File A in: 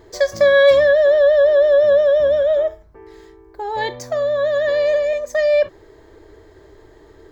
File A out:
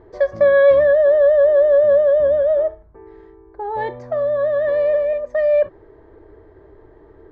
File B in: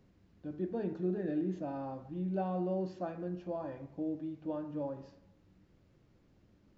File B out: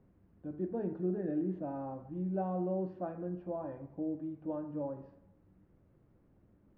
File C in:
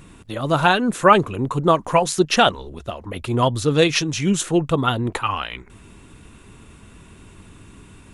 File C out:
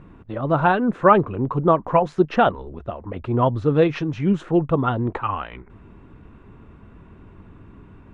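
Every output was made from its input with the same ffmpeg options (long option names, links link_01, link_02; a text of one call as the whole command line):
ffmpeg -i in.wav -af "lowpass=1400" out.wav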